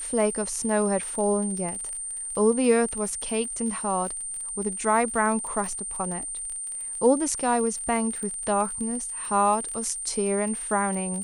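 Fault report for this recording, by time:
crackle 36 per s -32 dBFS
whine 8.9 kHz -31 dBFS

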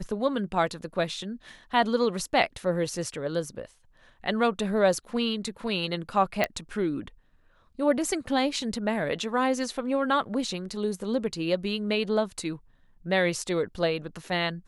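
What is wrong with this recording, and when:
6.44 s: pop -10 dBFS

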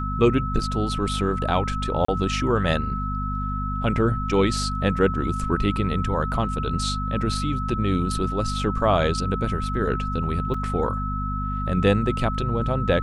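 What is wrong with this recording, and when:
hum 50 Hz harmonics 5 -28 dBFS
whine 1.3 kHz -29 dBFS
2.05–2.08 s: dropout 34 ms
10.54 s: dropout 4.2 ms

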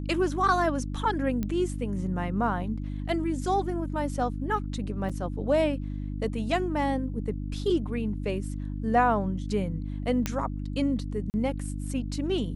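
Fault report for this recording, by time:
hum 50 Hz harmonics 6 -33 dBFS
1.43 s: pop -18 dBFS
5.09–5.10 s: dropout 5.5 ms
10.26 s: pop -12 dBFS
11.30–11.34 s: dropout 39 ms

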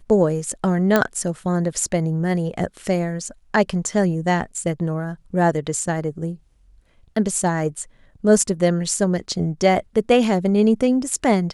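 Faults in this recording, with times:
0.96 s: pop -3 dBFS

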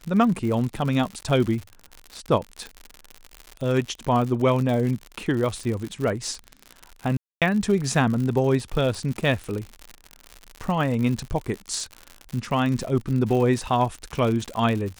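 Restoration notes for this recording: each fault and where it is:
crackle 91 per s -28 dBFS
7.17–7.42 s: dropout 247 ms

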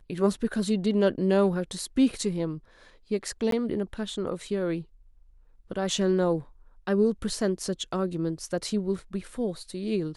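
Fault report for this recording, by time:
3.51–3.52 s: dropout 13 ms

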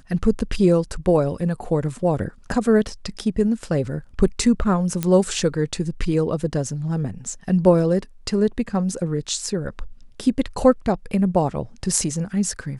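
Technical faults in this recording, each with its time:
5.03 s: pop -8 dBFS

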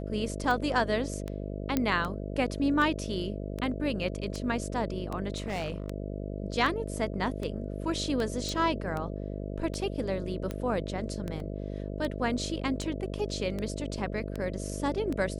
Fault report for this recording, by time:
buzz 50 Hz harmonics 13 -36 dBFS
tick 78 rpm
1.77 s: pop -12 dBFS
5.36–5.88 s: clipped -28.5 dBFS
8.49 s: pop
11.40 s: dropout 2.3 ms

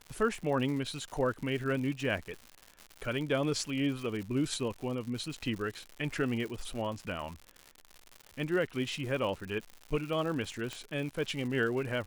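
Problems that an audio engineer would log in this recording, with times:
crackle 160 per s -38 dBFS
10.73 s: pop -22 dBFS

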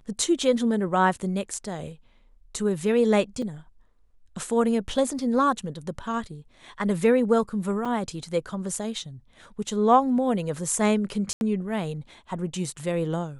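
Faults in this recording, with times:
3.42 s: dropout 3.8 ms
7.85–7.86 s: dropout 5.1 ms
11.33–11.41 s: dropout 81 ms

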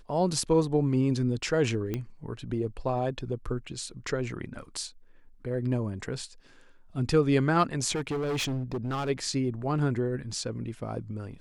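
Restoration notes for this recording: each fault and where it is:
1.94 s: pop -18 dBFS
7.95–9.10 s: clipped -27 dBFS

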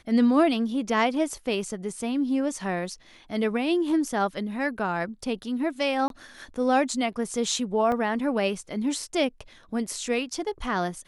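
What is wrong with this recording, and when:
6.08–6.10 s: dropout 22 ms
7.92 s: dropout 2.1 ms

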